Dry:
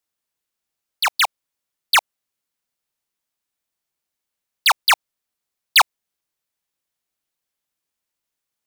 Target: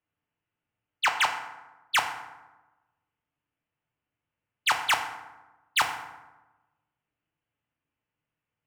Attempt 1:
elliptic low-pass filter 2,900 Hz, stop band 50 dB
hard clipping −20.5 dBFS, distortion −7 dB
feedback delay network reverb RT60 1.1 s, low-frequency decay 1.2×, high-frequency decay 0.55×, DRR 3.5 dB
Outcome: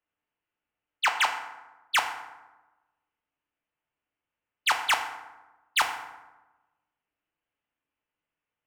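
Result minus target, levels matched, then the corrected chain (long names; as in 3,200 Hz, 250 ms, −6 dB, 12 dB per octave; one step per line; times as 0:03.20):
125 Hz band −8.5 dB
elliptic low-pass filter 2,900 Hz, stop band 50 dB
parametric band 120 Hz +12.5 dB 1.5 octaves
hard clipping −20.5 dBFS, distortion −8 dB
feedback delay network reverb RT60 1.1 s, low-frequency decay 1.2×, high-frequency decay 0.55×, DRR 3.5 dB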